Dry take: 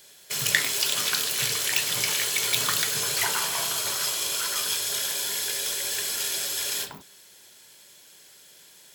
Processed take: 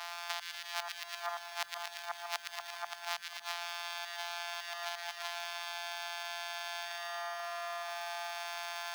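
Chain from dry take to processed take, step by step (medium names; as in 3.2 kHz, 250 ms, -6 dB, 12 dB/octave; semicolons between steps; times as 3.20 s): sorted samples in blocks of 256 samples; inverted gate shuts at -15 dBFS, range -37 dB; dynamic bell 3.3 kHz, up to +3 dB, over -49 dBFS, Q 1.3; peak limiter -22 dBFS, peak gain reduction 8 dB; steep high-pass 680 Hz 72 dB/octave; resonant high shelf 6.4 kHz -6.5 dB, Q 1.5; on a send: two-band feedback delay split 1.5 kHz, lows 486 ms, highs 115 ms, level -6 dB; on the sum: compression 6:1, threshold -53 dBFS, peak gain reduction 19.5 dB; feedback echo behind a high-pass 198 ms, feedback 68%, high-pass 1.5 kHz, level -11 dB; companded quantiser 8-bit; gain riding within 3 dB 0.5 s; trim +15.5 dB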